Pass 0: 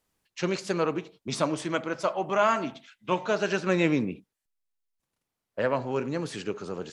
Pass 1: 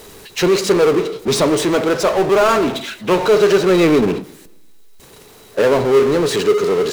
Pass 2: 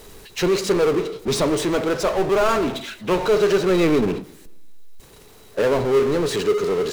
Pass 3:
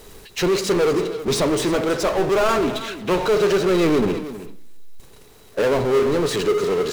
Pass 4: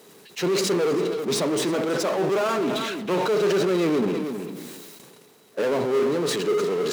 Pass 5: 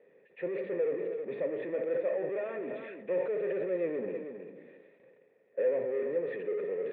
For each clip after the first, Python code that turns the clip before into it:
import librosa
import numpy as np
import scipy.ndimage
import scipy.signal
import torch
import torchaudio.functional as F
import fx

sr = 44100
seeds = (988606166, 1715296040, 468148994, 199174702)

y1 = fx.small_body(x, sr, hz=(420.0, 3900.0), ring_ms=45, db=14)
y1 = fx.power_curve(y1, sr, exponent=0.5)
y1 = fx.echo_warbled(y1, sr, ms=116, feedback_pct=47, rate_hz=2.8, cents=200, wet_db=-22)
y1 = F.gain(torch.from_numpy(y1), 3.0).numpy()
y2 = fx.low_shelf(y1, sr, hz=63.0, db=12.0)
y2 = F.gain(torch.from_numpy(y2), -5.5).numpy()
y3 = fx.leveller(y2, sr, passes=1)
y3 = y3 + 10.0 ** (-14.0 / 20.0) * np.pad(y3, (int(318 * sr / 1000.0), 0))[:len(y3)]
y3 = F.gain(torch.from_numpy(y3), -2.5).numpy()
y4 = scipy.signal.sosfilt(scipy.signal.butter(4, 160.0, 'highpass', fs=sr, output='sos'), y3)
y4 = fx.low_shelf(y4, sr, hz=320.0, db=3.5)
y4 = fx.sustainer(y4, sr, db_per_s=25.0)
y4 = F.gain(torch.from_numpy(y4), -6.0).numpy()
y5 = fx.formant_cascade(y4, sr, vowel='e')